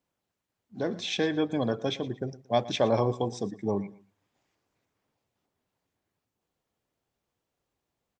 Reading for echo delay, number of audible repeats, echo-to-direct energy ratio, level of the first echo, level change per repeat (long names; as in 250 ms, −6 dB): 115 ms, 2, −18.0 dB, −18.5 dB, −11.5 dB